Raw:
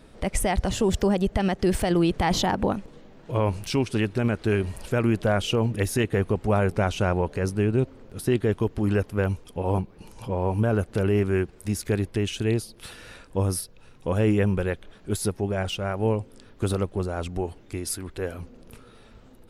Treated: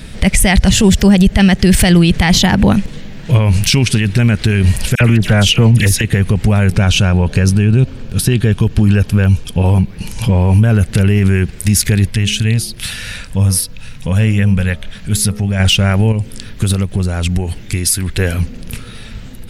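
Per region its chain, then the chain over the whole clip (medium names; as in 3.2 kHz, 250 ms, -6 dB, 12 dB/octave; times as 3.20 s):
4.95–6.01 s: phase dispersion lows, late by 55 ms, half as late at 2.1 kHz + loudspeaker Doppler distortion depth 0.14 ms
6.75–9.66 s: treble shelf 9.1 kHz -6 dB + band-stop 2 kHz, Q 6.5
12.10–15.60 s: peaking EQ 360 Hz -11.5 dB 0.3 oct + de-hum 69.83 Hz, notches 19 + compression 1.5:1, threshold -44 dBFS
16.12–18.10 s: treble shelf 10 kHz +3.5 dB + compression 2.5:1, threshold -34 dBFS
whole clip: high-order bell 600 Hz -11.5 dB 2.6 oct; loudness maximiser +23.5 dB; trim -1 dB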